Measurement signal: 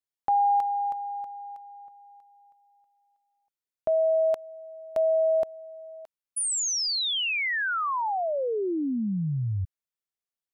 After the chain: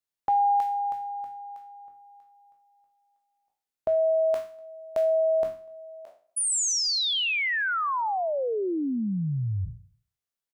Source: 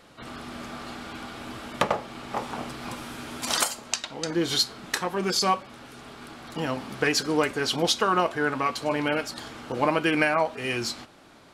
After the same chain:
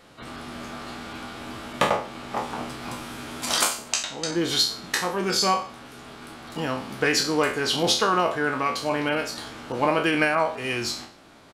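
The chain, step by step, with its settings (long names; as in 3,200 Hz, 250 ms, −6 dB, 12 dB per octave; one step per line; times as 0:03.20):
peak hold with a decay on every bin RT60 0.43 s
slap from a distant wall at 42 metres, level −30 dB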